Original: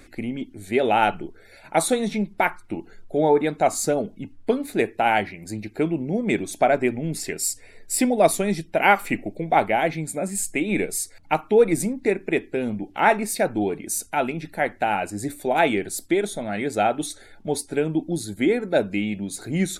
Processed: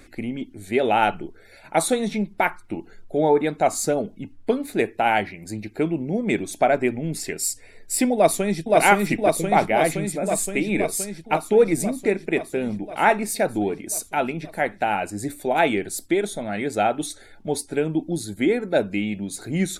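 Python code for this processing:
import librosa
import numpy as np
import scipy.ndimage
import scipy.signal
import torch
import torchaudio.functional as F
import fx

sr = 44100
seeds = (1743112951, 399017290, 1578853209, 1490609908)

y = fx.echo_throw(x, sr, start_s=8.14, length_s=0.63, ms=520, feedback_pct=75, wet_db=-0.5)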